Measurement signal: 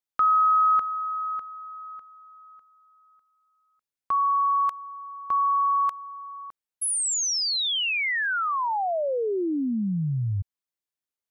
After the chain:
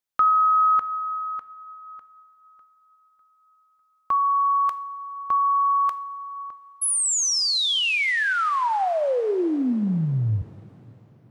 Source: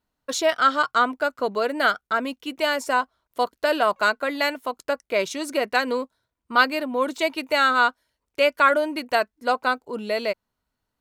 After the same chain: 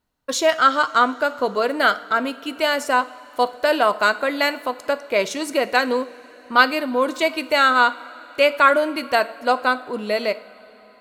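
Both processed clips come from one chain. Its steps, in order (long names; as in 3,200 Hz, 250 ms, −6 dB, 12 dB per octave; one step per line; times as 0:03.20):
coupled-rooms reverb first 0.53 s, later 4.7 s, from −16 dB, DRR 12.5 dB
level +3 dB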